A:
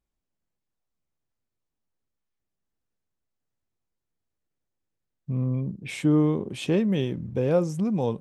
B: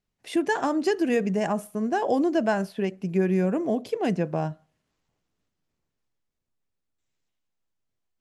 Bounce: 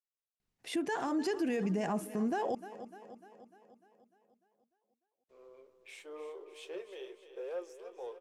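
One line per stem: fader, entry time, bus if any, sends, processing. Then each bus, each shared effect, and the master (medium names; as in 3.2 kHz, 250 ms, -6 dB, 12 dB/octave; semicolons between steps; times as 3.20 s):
-14.5 dB, 0.00 s, no send, echo send -12 dB, Chebyshev high-pass 370 Hz, order 6; waveshaping leveller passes 1; flange 0.79 Hz, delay 7.8 ms, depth 8.4 ms, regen -53%
-3.5 dB, 0.40 s, muted 2.55–5.29 s, no send, echo send -19.5 dB, band-stop 600 Hz, Q 14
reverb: none
echo: feedback delay 299 ms, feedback 57%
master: peak limiter -25.5 dBFS, peak gain reduction 9.5 dB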